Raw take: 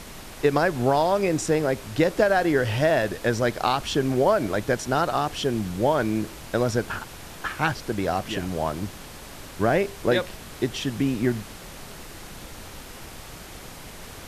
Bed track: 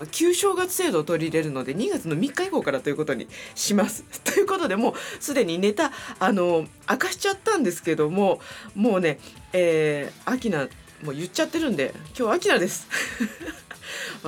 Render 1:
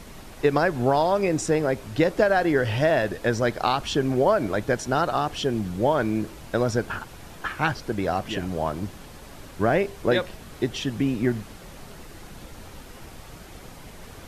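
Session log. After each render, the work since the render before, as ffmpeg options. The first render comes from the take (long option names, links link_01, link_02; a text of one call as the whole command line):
ffmpeg -i in.wav -af "afftdn=noise_reduction=6:noise_floor=-42" out.wav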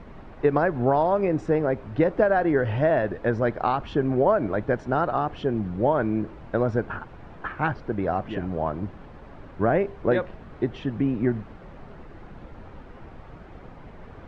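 ffmpeg -i in.wav -af "lowpass=1600" out.wav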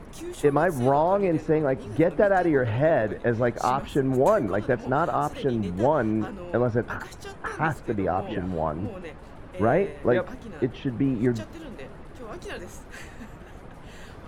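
ffmpeg -i in.wav -i bed.wav -filter_complex "[1:a]volume=-17.5dB[link_01];[0:a][link_01]amix=inputs=2:normalize=0" out.wav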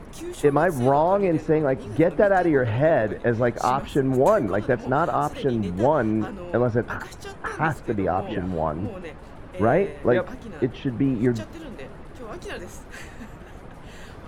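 ffmpeg -i in.wav -af "volume=2dB" out.wav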